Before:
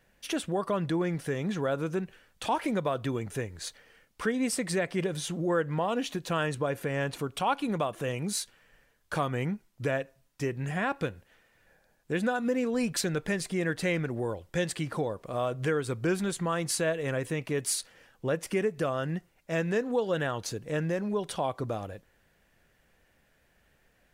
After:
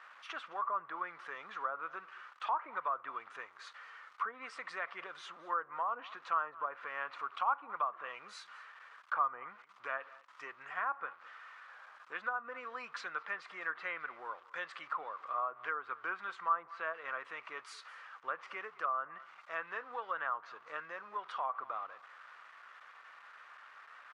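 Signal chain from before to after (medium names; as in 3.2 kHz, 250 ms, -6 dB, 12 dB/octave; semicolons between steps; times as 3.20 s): jump at every zero crossing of -43.5 dBFS; ladder band-pass 1.3 kHz, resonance 70%; band-stop 1.7 kHz, Q 27; delay 213 ms -21.5 dB; low-pass that closes with the level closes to 1.1 kHz, closed at -37.5 dBFS; trim +7 dB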